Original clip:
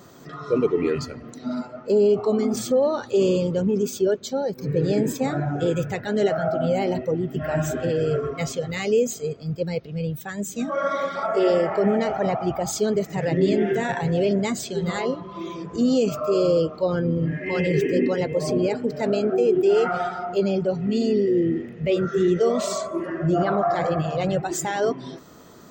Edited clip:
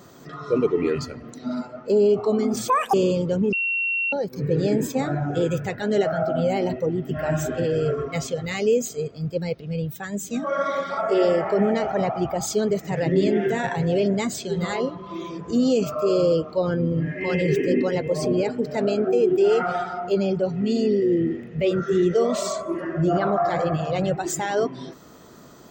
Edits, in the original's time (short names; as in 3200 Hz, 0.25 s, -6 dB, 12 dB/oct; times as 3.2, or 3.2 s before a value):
2.68–3.19 speed 199%
3.78–4.38 bleep 2730 Hz -21 dBFS